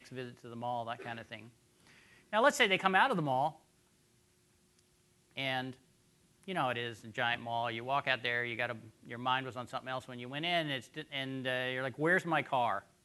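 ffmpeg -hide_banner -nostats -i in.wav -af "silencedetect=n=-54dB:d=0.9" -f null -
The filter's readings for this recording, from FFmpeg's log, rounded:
silence_start: 3.57
silence_end: 4.79 | silence_duration: 1.22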